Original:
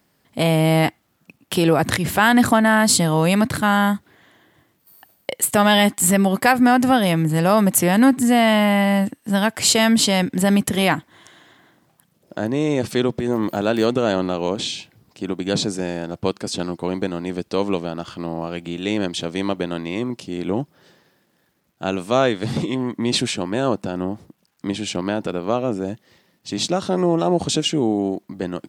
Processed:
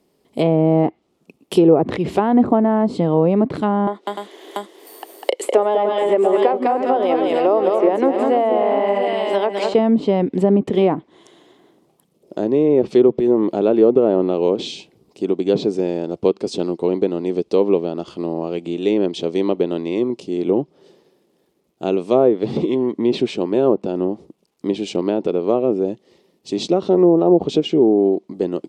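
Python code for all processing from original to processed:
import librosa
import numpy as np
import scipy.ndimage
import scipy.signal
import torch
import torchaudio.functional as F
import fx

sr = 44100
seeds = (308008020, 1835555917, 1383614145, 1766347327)

y = fx.chain(x, sr, fx.highpass(hz=350.0, slope=24),
    fx.echo_multitap(ms=(200, 300, 689), db=(-5.0, -10.5, -10.0)),
    fx.band_squash(depth_pct=70), at=(3.87, 9.74))
y = fx.high_shelf(y, sr, hz=5900.0, db=-8.0)
y = fx.env_lowpass_down(y, sr, base_hz=1100.0, full_db=-13.0)
y = fx.graphic_eq_15(y, sr, hz=(100, 400, 1600, 10000), db=(-11, 11, -12, 4))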